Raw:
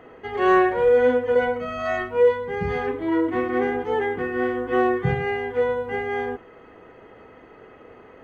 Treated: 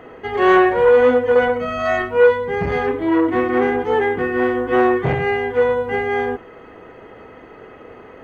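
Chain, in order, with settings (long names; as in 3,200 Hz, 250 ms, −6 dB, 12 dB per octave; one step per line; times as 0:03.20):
saturating transformer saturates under 720 Hz
level +6.5 dB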